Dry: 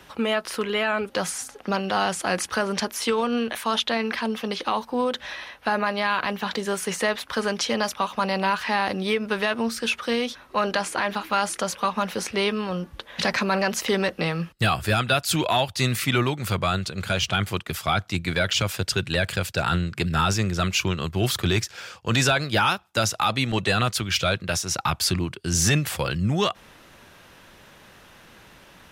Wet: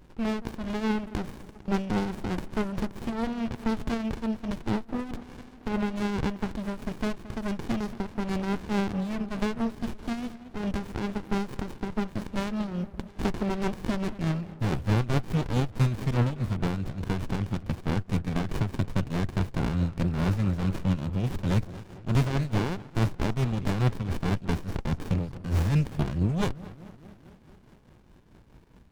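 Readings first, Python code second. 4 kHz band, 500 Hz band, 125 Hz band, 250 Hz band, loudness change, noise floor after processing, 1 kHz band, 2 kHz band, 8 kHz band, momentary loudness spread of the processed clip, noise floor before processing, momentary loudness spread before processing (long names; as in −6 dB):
−16.5 dB, −8.5 dB, +0.5 dB, 0.0 dB, −5.5 dB, −53 dBFS, −11.0 dB, −13.5 dB, −19.5 dB, 8 LU, −51 dBFS, 5 LU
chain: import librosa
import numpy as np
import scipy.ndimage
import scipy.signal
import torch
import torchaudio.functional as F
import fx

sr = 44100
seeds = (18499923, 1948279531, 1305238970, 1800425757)

p1 = x + fx.echo_tape(x, sr, ms=226, feedback_pct=80, wet_db=-12.0, lp_hz=1100.0, drive_db=15.0, wow_cents=27, dry=0)
p2 = fx.tremolo_shape(p1, sr, shape='triangle', hz=4.7, depth_pct=60)
p3 = fx.low_shelf(p2, sr, hz=130.0, db=9.0)
p4 = fx.running_max(p3, sr, window=65)
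y = p4 * librosa.db_to_amplitude(-2.5)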